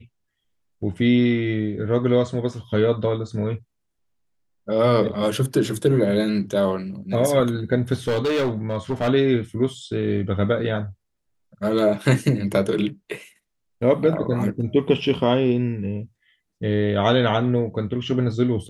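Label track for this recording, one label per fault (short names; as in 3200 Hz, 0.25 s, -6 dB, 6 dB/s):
8.070000	9.080000	clipped -18 dBFS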